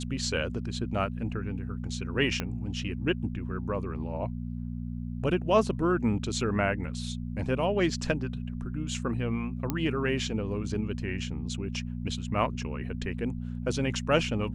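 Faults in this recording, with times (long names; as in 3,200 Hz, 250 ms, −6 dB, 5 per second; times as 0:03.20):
mains hum 60 Hz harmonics 4 −35 dBFS
0:02.40: click −15 dBFS
0:09.70: click −14 dBFS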